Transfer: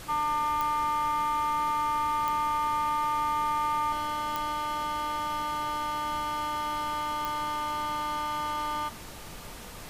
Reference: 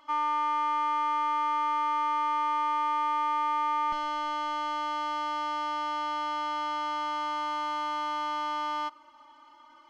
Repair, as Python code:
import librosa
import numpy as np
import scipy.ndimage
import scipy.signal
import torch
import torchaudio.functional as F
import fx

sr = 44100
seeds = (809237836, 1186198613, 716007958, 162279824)

y = fx.fix_declick_ar(x, sr, threshold=10.0)
y = fx.noise_reduce(y, sr, print_start_s=8.95, print_end_s=9.45, reduce_db=11.0)